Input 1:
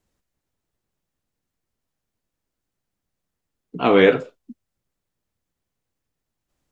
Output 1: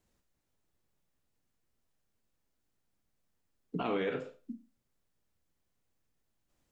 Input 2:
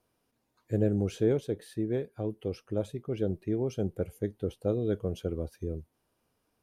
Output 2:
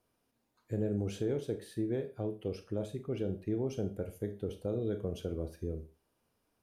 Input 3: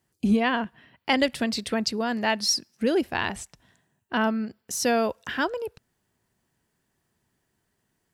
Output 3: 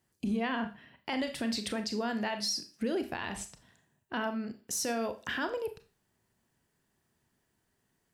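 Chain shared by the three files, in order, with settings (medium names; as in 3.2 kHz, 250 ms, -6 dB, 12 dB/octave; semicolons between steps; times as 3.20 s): compression 4:1, threshold -26 dBFS; Schroeder reverb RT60 0.33 s, combs from 27 ms, DRR 8.5 dB; peak limiter -21 dBFS; trim -2.5 dB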